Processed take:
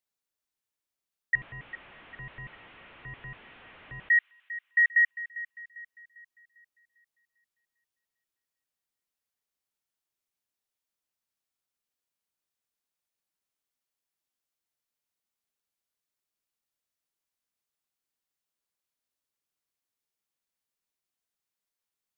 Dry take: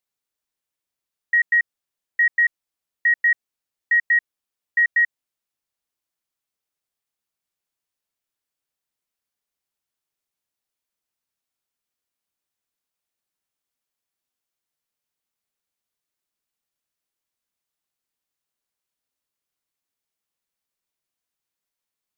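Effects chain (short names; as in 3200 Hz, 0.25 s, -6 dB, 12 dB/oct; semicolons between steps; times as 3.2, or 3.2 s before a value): 1.35–4.09 delta modulation 16 kbps, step -41.5 dBFS; thin delay 0.399 s, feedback 42%, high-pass 2000 Hz, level -12 dB; gain -4 dB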